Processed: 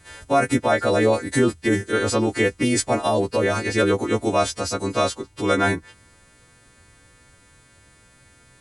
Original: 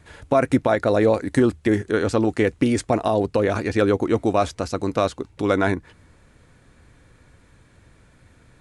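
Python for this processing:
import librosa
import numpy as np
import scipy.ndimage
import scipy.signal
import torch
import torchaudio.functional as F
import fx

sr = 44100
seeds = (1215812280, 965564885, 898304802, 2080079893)

y = fx.freq_snap(x, sr, grid_st=2)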